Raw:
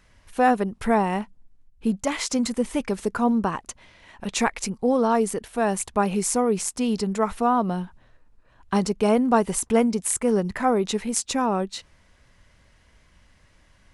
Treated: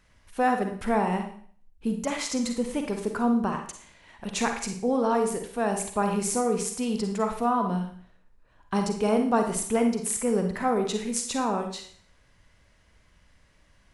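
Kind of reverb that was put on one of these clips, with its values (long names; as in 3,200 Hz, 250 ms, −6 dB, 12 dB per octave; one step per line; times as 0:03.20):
four-comb reverb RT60 0.52 s, DRR 4.5 dB
level −4.5 dB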